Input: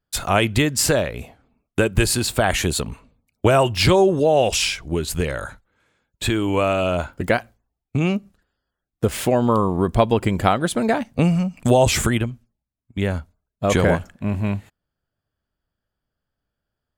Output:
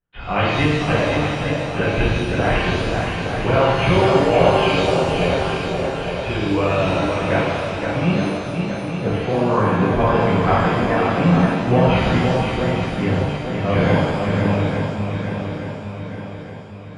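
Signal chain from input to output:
Chebyshev low-pass filter 3,100 Hz, order 6
feedback echo with a long and a short gap by turns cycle 863 ms, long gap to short 1.5 to 1, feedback 49%, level −5 dB
reverb with rising layers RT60 1.3 s, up +7 semitones, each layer −8 dB, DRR −7.5 dB
level −7.5 dB

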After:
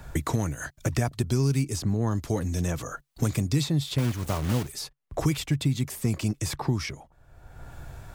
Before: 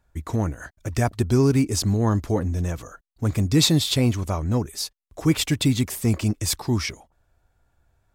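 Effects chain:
0:03.98–0:04.73: one scale factor per block 3 bits
parametric band 140 Hz +9 dB 0.29 octaves
multiband upward and downward compressor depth 100%
level −7 dB

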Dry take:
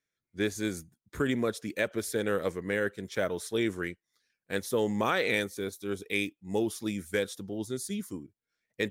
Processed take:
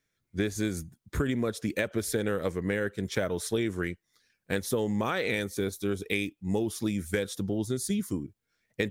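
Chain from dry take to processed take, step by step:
low-shelf EQ 160 Hz +9.5 dB
downward compressor, threshold −32 dBFS, peak gain reduction 10 dB
level +6.5 dB

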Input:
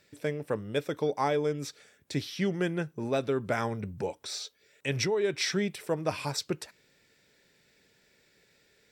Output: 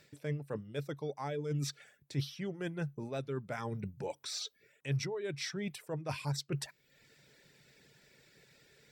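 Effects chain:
reverb reduction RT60 0.61 s
reversed playback
downward compressor 6 to 1, threshold −40 dBFS, peak gain reduction 15.5 dB
reversed playback
parametric band 140 Hz +11.5 dB 0.24 octaves
level +3 dB

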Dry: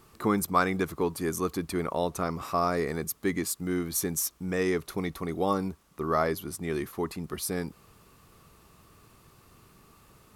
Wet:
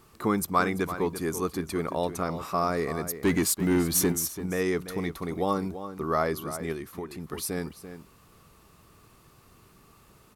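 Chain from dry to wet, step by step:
0:03.21–0:04.12: leveller curve on the samples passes 2
slap from a distant wall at 58 metres, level −11 dB
0:06.72–0:07.32: downward compressor 6 to 1, threshold −33 dBFS, peak gain reduction 8 dB

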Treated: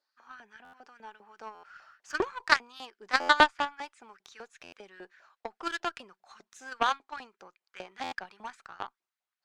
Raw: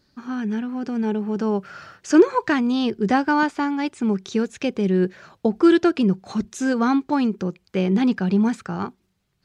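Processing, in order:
auto-filter high-pass saw up 5 Hz 660–1,800 Hz
harmonic generator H 3 −10 dB, 5 −41 dB, 6 −43 dB, 8 −42 dB, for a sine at −6 dBFS
buffer that repeats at 0:00.64/0:01.54/0:03.20/0:04.63/0:08.03, samples 512, times 7
level +2.5 dB

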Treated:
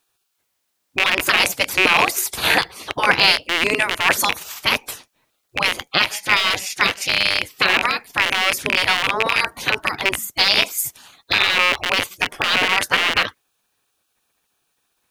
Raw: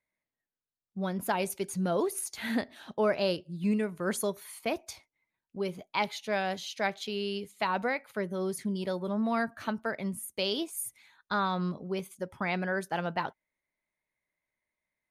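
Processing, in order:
loose part that buzzes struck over −43 dBFS, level −26 dBFS
gate on every frequency bin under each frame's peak −15 dB weak
boost into a limiter +24.5 dB
level −1 dB

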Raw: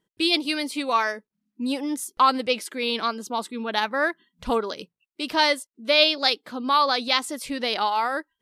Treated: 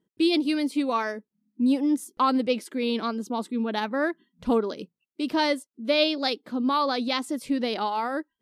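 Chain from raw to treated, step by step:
parametric band 250 Hz +13 dB 2.3 octaves
level −7.5 dB

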